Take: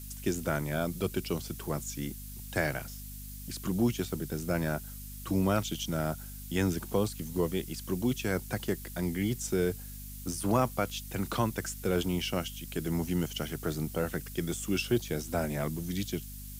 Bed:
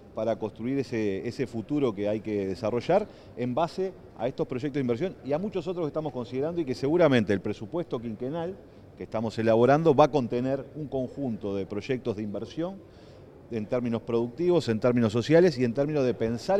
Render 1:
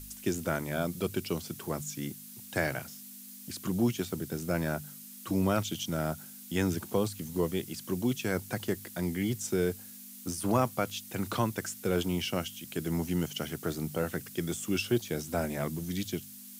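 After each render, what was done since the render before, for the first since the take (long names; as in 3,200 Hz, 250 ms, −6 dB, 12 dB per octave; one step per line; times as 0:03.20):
hum removal 50 Hz, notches 3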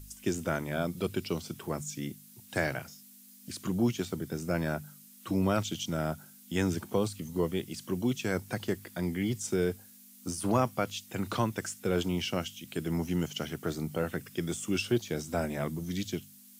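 noise reduction from a noise print 7 dB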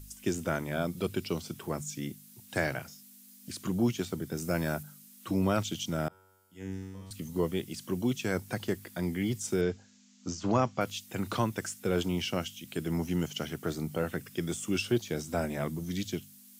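0:04.37–0:04.83: high-shelf EQ 5,400 Hz +7.5 dB
0:06.08–0:07.11: tuned comb filter 95 Hz, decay 1.6 s, mix 100%
0:09.61–0:10.81: Butterworth low-pass 7,400 Hz 96 dB per octave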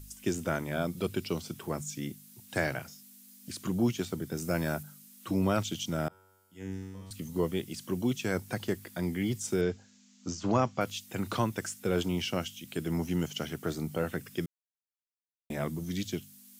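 0:14.46–0:15.50: silence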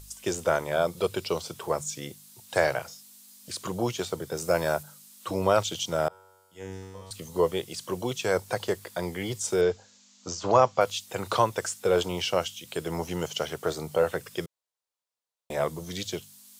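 octave-band graphic EQ 250/500/1,000/4,000/8,000 Hz −10/+11/+8/+6/+5 dB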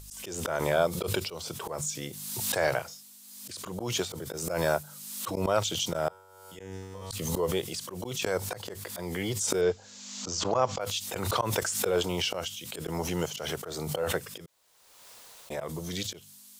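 volume swells 161 ms
background raised ahead of every attack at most 38 dB per second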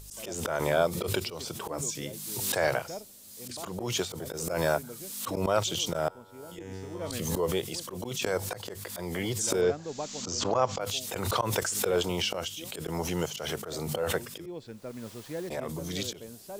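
mix in bed −17.5 dB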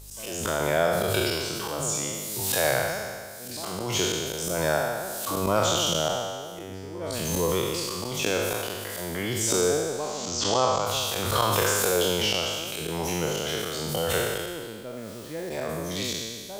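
peak hold with a decay on every bin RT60 1.76 s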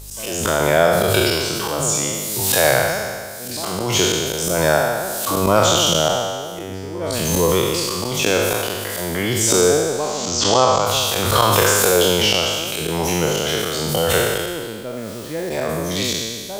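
level +8.5 dB
brickwall limiter −1 dBFS, peak gain reduction 1.5 dB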